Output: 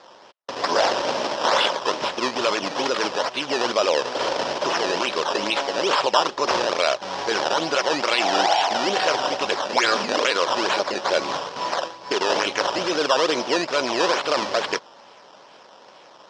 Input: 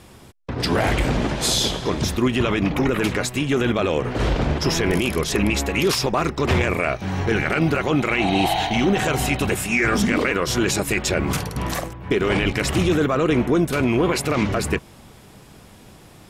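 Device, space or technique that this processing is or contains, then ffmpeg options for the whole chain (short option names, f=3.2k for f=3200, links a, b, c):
circuit-bent sampling toy: -af "acrusher=samples=14:mix=1:aa=0.000001:lfo=1:lforange=14:lforate=2.3,highpass=540,equalizer=f=560:t=q:w=4:g=7,equalizer=f=970:t=q:w=4:g=6,equalizer=f=2.1k:t=q:w=4:g=-4,equalizer=f=3.1k:t=q:w=4:g=4,equalizer=f=5.3k:t=q:w=4:g=9,lowpass=f=5.9k:w=0.5412,lowpass=f=5.9k:w=1.3066,volume=1dB"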